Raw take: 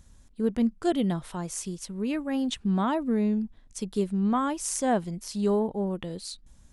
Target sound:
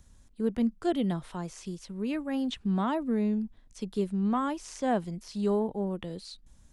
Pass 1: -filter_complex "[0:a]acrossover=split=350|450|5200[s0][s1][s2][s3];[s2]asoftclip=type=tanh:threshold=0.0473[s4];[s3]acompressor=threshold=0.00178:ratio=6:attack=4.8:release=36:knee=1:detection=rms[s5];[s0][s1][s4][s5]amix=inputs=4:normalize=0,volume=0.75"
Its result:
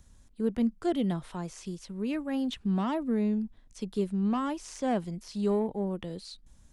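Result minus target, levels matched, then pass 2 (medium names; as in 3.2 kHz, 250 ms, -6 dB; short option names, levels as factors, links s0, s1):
saturation: distortion +17 dB
-filter_complex "[0:a]acrossover=split=350|450|5200[s0][s1][s2][s3];[s2]asoftclip=type=tanh:threshold=0.178[s4];[s3]acompressor=threshold=0.00178:ratio=6:attack=4.8:release=36:knee=1:detection=rms[s5];[s0][s1][s4][s5]amix=inputs=4:normalize=0,volume=0.75"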